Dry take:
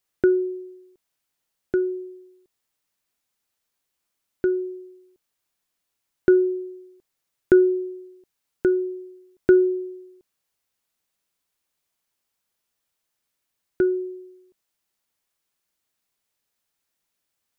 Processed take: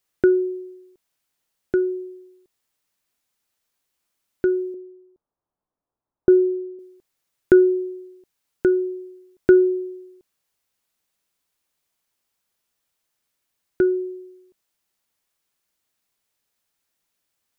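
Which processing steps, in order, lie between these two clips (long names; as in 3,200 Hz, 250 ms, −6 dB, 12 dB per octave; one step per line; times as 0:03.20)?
0:04.74–0:06.79: low-pass filter 1,100 Hz 24 dB per octave
level +2 dB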